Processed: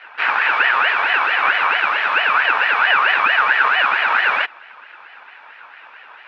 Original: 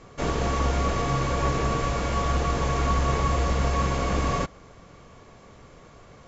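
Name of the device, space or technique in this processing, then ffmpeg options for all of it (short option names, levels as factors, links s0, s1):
voice changer toy: -af "aeval=exprs='val(0)*sin(2*PI*1500*n/s+1500*0.25/4.5*sin(2*PI*4.5*n/s))':c=same,highpass=490,equalizer=f=890:t=q:w=4:g=9,equalizer=f=1500:t=q:w=4:g=7,equalizer=f=2600:t=q:w=4:g=8,lowpass=f=3800:w=0.5412,lowpass=f=3800:w=1.3066,volume=2"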